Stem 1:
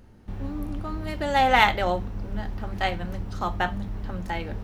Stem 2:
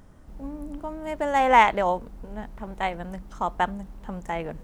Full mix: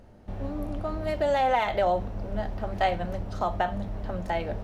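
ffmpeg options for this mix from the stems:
-filter_complex "[0:a]highshelf=f=12k:g=-7,volume=-1.5dB[a];[1:a]volume=-1,volume=-19dB,asplit=2[b][c];[c]apad=whole_len=204207[d];[a][d]sidechaincompress=threshold=-43dB:ratio=10:attack=22:release=153[e];[e][b]amix=inputs=2:normalize=0,equalizer=f=620:t=o:w=0.61:g=11.5"

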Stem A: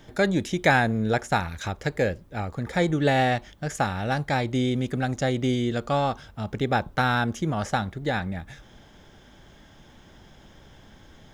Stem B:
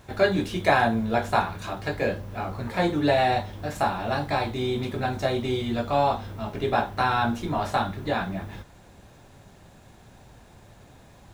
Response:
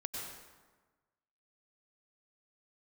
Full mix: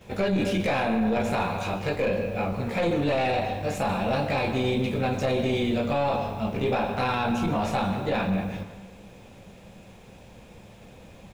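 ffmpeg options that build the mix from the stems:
-filter_complex "[0:a]volume=-7dB[a];[1:a]volume=-1,adelay=10,volume=-3dB,asplit=2[b][c];[c]volume=-4.5dB[d];[2:a]atrim=start_sample=2205[e];[d][e]afir=irnorm=-1:irlink=0[f];[a][b][f]amix=inputs=3:normalize=0,equalizer=f=200:t=o:w=0.33:g=9,equalizer=f=500:t=o:w=0.33:g=10,equalizer=f=1.6k:t=o:w=0.33:g=-4,equalizer=f=2.5k:t=o:w=0.33:g=10,aeval=exprs='(tanh(3.55*val(0)+0.3)-tanh(0.3))/3.55':c=same,alimiter=limit=-17.5dB:level=0:latency=1:release=10"

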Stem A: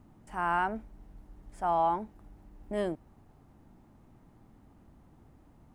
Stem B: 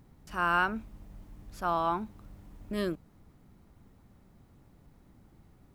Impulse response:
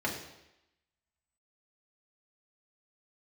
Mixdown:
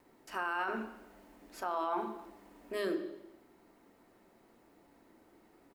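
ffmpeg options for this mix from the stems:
-filter_complex "[0:a]volume=-19dB[a];[1:a]highpass=f=280:w=0.5412,highpass=f=280:w=1.3066,alimiter=limit=-20.5dB:level=0:latency=1,adelay=2,volume=-1.5dB,asplit=2[b][c];[c]volume=-7.5dB[d];[2:a]atrim=start_sample=2205[e];[d][e]afir=irnorm=-1:irlink=0[f];[a][b][f]amix=inputs=3:normalize=0,alimiter=level_in=1.5dB:limit=-24dB:level=0:latency=1:release=22,volume=-1.5dB"

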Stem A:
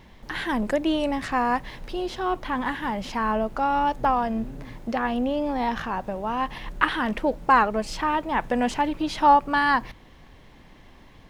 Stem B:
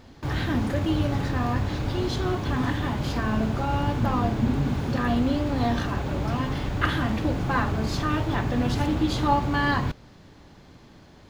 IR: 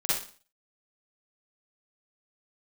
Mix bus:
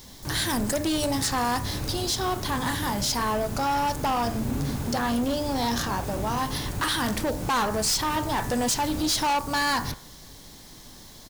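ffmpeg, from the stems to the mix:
-filter_complex "[0:a]bandreject=f=75.5:t=h:w=4,bandreject=f=151:t=h:w=4,bandreject=f=226.5:t=h:w=4,bandreject=f=302:t=h:w=4,bandreject=f=377.5:t=h:w=4,bandreject=f=453:t=h:w=4,bandreject=f=528.5:t=h:w=4,bandreject=f=604:t=h:w=4,bandreject=f=679.5:t=h:w=4,bandreject=f=755:t=h:w=4,bandreject=f=830.5:t=h:w=4,bandreject=f=906:t=h:w=4,bandreject=f=981.5:t=h:w=4,bandreject=f=1.057k:t=h:w=4,bandreject=f=1.1325k:t=h:w=4,bandreject=f=1.208k:t=h:w=4,bandreject=f=1.2835k:t=h:w=4,bandreject=f=1.359k:t=h:w=4,bandreject=f=1.4345k:t=h:w=4,bandreject=f=1.51k:t=h:w=4,bandreject=f=1.5855k:t=h:w=4,bandreject=f=1.661k:t=h:w=4,bandreject=f=1.7365k:t=h:w=4,bandreject=f=1.812k:t=h:w=4,bandreject=f=1.8875k:t=h:w=4,bandreject=f=1.963k:t=h:w=4,bandreject=f=2.0385k:t=h:w=4,bandreject=f=2.114k:t=h:w=4,bandreject=f=2.1895k:t=h:w=4,bandreject=f=2.265k:t=h:w=4,aexciter=amount=4.6:drive=9.8:freq=3.9k,volume=-0.5dB,asplit=2[a][b];[1:a]adelay=23,volume=-3.5dB[c];[b]apad=whole_len=499021[d];[c][d]sidechaincompress=threshold=-25dB:ratio=8:attack=16:release=291[e];[a][e]amix=inputs=2:normalize=0,asoftclip=type=hard:threshold=-21.5dB"

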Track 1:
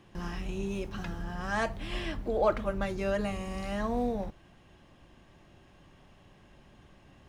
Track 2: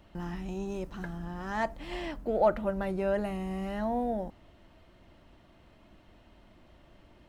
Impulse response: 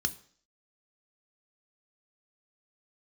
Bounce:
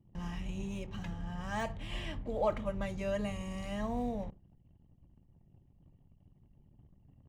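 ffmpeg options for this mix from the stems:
-filter_complex "[0:a]deesser=1,volume=-4dB,asplit=2[a][b];[b]volume=-12.5dB[c];[1:a]highpass=320,volume=-1,volume=-16.5dB[d];[2:a]atrim=start_sample=2205[e];[c][e]afir=irnorm=-1:irlink=0[f];[a][d][f]amix=inputs=3:normalize=0,anlmdn=0.000158"

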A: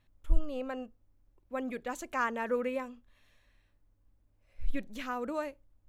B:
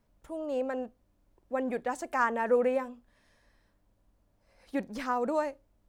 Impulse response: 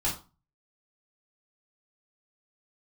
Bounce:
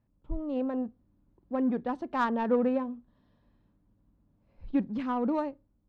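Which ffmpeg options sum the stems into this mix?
-filter_complex "[0:a]volume=0dB[a];[1:a]equalizer=f=125:t=o:w=1:g=7,equalizer=f=250:t=o:w=1:g=4,equalizer=f=500:t=o:w=1:g=-10,equalizer=f=4k:t=o:w=1:g=11,dynaudnorm=f=110:g=7:m=9dB,volume=-6.5dB[b];[a][b]amix=inputs=2:normalize=0,highpass=f=88:p=1,adynamicsmooth=sensitivity=0.5:basefreq=1.1k"

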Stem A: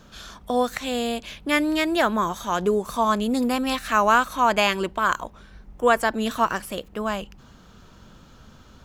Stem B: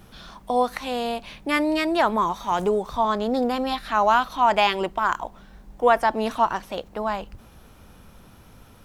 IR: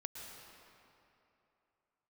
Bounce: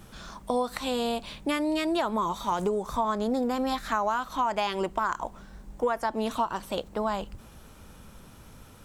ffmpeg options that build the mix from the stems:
-filter_complex "[0:a]volume=-12.5dB[a];[1:a]equalizer=f=7.9k:t=o:w=0.65:g=6.5,bandreject=f=720:w=18,volume=-1dB[b];[a][b]amix=inputs=2:normalize=0,acompressor=threshold=-23dB:ratio=10"

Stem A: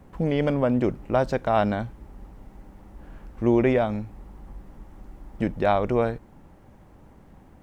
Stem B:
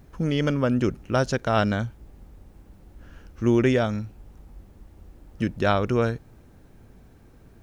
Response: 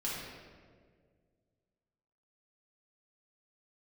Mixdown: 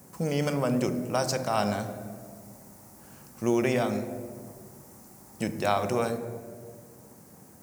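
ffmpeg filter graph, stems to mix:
-filter_complex "[0:a]highpass=f=94:w=0.5412,highpass=f=94:w=1.3066,aexciter=amount=11.5:drive=3:freq=4.8k,volume=-3dB,asplit=2[a][b];[b]volume=-11.5dB[c];[1:a]highpass=190,volume=-1,volume=-7dB[d];[2:a]atrim=start_sample=2205[e];[c][e]afir=irnorm=-1:irlink=0[f];[a][d][f]amix=inputs=3:normalize=0"

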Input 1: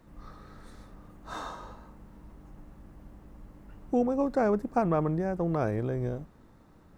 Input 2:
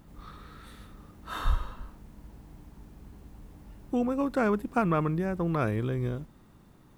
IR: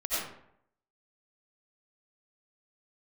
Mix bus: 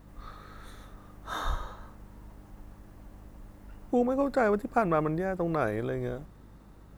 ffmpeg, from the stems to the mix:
-filter_complex "[0:a]volume=1dB[a];[1:a]highshelf=f=4.6k:g=4.5,aeval=exprs='val(0)+0.00447*(sin(2*PI*50*n/s)+sin(2*PI*2*50*n/s)/2+sin(2*PI*3*50*n/s)/3+sin(2*PI*4*50*n/s)/4+sin(2*PI*5*50*n/s)/5)':c=same,volume=-1,volume=-6dB[b];[a][b]amix=inputs=2:normalize=0"

